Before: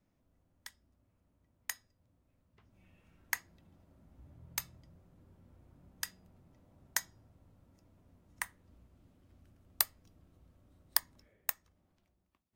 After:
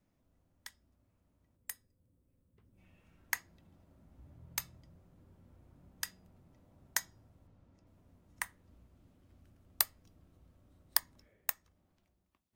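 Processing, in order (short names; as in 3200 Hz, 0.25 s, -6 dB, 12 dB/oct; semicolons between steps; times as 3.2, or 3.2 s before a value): 1.56–2.78 spectral gain 580–7600 Hz -9 dB; 7.47–7.87 air absorption 72 m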